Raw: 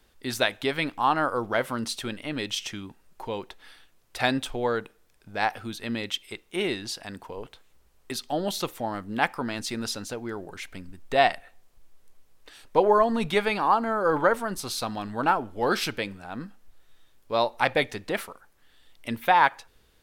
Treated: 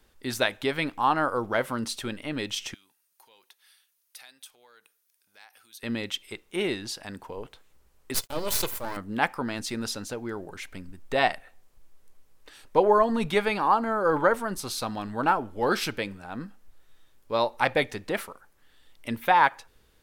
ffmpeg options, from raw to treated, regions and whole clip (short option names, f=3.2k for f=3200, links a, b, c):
-filter_complex "[0:a]asettb=1/sr,asplit=3[a][b][c];[a]atrim=end=2.744[d];[b]atrim=start=2.74:end=5.83,asetpts=PTS-STARTPTS,afade=t=in:d=0.004:c=qsin,afade=t=out:st=3.086:d=0.004:c=qsin,bandreject=f=7.5k:w=7.6,acompressor=threshold=-36dB:ratio=3:attack=3.2:release=140:knee=1:detection=peak,aderivative[e];[c]atrim=start=5.826[f];[d][e]acrossfade=d=0.004:c1=hsin:c2=qsin[g];[g][f]acrossfade=d=0.004:c1=qsin:c2=hsin,asettb=1/sr,asplit=3[h][i][j];[h]atrim=end=8.144[k];[i]atrim=start=8.14:end=8.97,asetpts=PTS-STARTPTS,afade=t=in:d=0.004:c=qsin,afade=t=out:st=0.826:d=0.004:c=qsin,aemphasis=mode=production:type=75kf,aecho=1:1:2:0.71,atrim=end_sample=36603,aeval=exprs='max(val(0),0)':c=same[l];[j]atrim=start=8.966[m];[k][l]acrossfade=d=0.004:c1=hsin:c2=qsin[n];[n][m]acrossfade=d=0.004:c1=qsin:c2=hsin,equalizer=f=3.6k:t=o:w=1.4:g=-2,bandreject=f=700:w=20"